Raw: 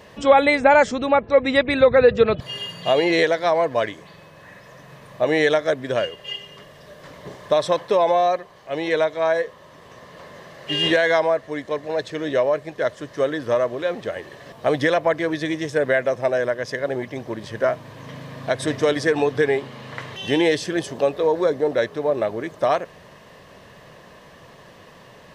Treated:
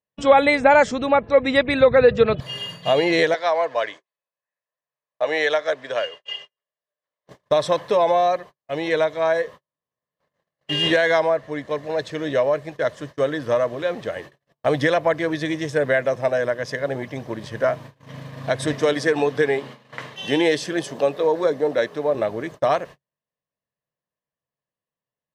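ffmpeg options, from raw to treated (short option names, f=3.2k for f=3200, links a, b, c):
-filter_complex "[0:a]asettb=1/sr,asplit=3[a][b][c];[a]atrim=end=3.344[d];[b]atrim=start=3.34:end=7.29,asetpts=PTS-STARTPTS,afade=t=in:d=0.004:c=qsin,afade=t=out:st=3.946:d=0.004:c=qsin,acrossover=split=430 7800:gain=0.112 1 0.1[e][f][g];[e][f][g]amix=inputs=3:normalize=0[h];[c]atrim=start=7.286[i];[d][h]acrossfade=d=0.004:c1=hsin:c2=qsin[j];[j][i]acrossfade=d=0.004:c1=qsin:c2=hsin,asettb=1/sr,asplit=3[k][l][m];[k]atrim=end=11.294[n];[l]atrim=start=11.29:end=11.69,asetpts=PTS-STARTPTS,afade=t=in:d=0.004:c=qsin,afade=t=out:st=0.396:d=0.004:c=qsin,highshelf=f=4.3k:g=-5[o];[m]atrim=start=11.686[p];[n][o]acrossfade=d=0.004:c1=hsin:c2=qsin[q];[q][p]acrossfade=d=0.004:c1=qsin:c2=hsin,asettb=1/sr,asplit=3[r][s][t];[r]atrim=end=18.734[u];[s]atrim=start=18.73:end=22.15,asetpts=PTS-STARTPTS,afade=t=in:d=0.004:c=qsin,afade=t=out:st=3.416:d=0.004:c=qsin,highpass=170[v];[t]atrim=start=22.146[w];[u][v]acrossfade=d=0.004:c1=hsin:c2=qsin[x];[x][w]acrossfade=d=0.004:c1=qsin:c2=hsin,agate=range=-47dB:threshold=-36dB:ratio=16:detection=peak,equalizer=f=140:t=o:w=0.21:g=5,bandreject=f=380:w=12"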